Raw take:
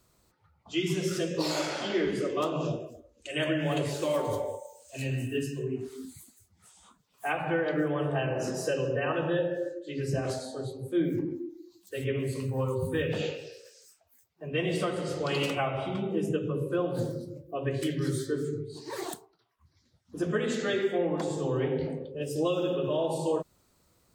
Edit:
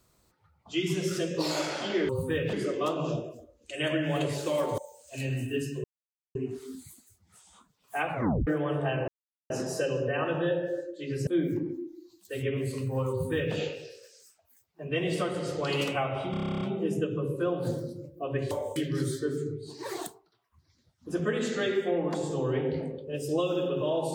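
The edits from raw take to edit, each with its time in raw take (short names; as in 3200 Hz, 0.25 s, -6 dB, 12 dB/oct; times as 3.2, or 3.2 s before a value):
4.34–4.59 move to 17.83
5.65 insert silence 0.51 s
7.43 tape stop 0.34 s
8.38 insert silence 0.42 s
10.15–10.89 cut
12.73–13.17 copy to 2.09
15.93 stutter 0.03 s, 11 plays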